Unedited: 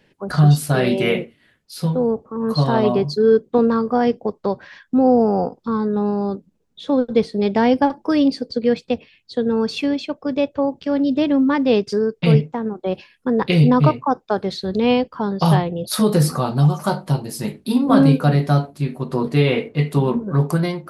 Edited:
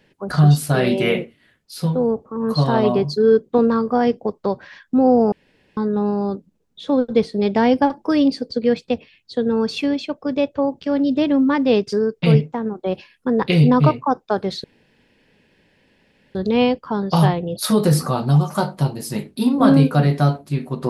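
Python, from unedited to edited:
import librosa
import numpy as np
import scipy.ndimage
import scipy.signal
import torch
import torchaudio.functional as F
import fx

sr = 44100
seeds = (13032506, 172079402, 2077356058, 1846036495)

y = fx.edit(x, sr, fx.room_tone_fill(start_s=5.32, length_s=0.45),
    fx.insert_room_tone(at_s=14.64, length_s=1.71), tone=tone)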